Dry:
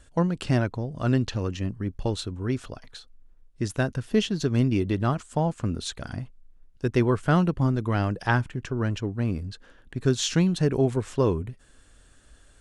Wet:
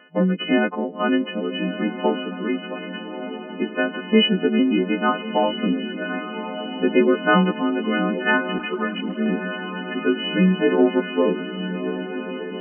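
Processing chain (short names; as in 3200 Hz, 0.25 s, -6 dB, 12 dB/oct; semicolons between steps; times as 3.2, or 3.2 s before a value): frequency quantiser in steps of 3 st; in parallel at +2.5 dB: compressor, threshold -30 dBFS, peak gain reduction 15 dB; on the sum: rotary speaker horn 0.9 Hz; on a send: diffused feedback echo 1.274 s, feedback 64%, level -10 dB; on the sum: FFT band-pass 170–3200 Hz; 8.58–9.26 ensemble effect; gain +5 dB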